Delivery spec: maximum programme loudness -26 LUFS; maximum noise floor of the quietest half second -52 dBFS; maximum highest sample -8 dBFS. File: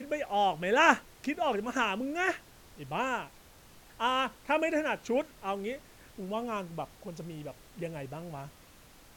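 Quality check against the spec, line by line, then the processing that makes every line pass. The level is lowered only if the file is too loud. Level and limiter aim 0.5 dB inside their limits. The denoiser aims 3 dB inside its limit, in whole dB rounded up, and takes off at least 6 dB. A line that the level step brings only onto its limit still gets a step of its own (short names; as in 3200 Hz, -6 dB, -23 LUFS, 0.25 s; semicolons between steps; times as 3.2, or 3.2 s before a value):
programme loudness -31.5 LUFS: OK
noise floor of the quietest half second -56 dBFS: OK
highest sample -7.5 dBFS: fail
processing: limiter -8.5 dBFS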